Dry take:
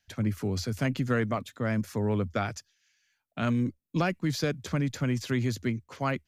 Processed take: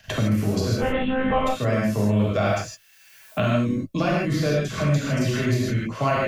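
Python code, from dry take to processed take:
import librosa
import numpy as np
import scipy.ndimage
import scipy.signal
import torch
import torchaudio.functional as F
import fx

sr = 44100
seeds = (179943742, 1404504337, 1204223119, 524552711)

y = fx.dynamic_eq(x, sr, hz=1100.0, q=2.7, threshold_db=-48.0, ratio=4.0, max_db=-5)
y = fx.level_steps(y, sr, step_db=11)
y = fx.small_body(y, sr, hz=(640.0, 1100.0, 2700.0), ring_ms=45, db=13)
y = fx.lpc_monotone(y, sr, seeds[0], pitch_hz=260.0, order=8, at=(0.76, 1.4))
y = fx.dmg_noise_colour(y, sr, seeds[1], colour='blue', level_db=-74.0, at=(2.43, 3.39), fade=0.02)
y = fx.dispersion(y, sr, late='lows', ms=83.0, hz=1200.0, at=(4.53, 5.7))
y = fx.rev_gated(y, sr, seeds[2], gate_ms=180, shape='flat', drr_db=-6.5)
y = fx.band_squash(y, sr, depth_pct=70)
y = F.gain(torch.from_numpy(y), 4.0).numpy()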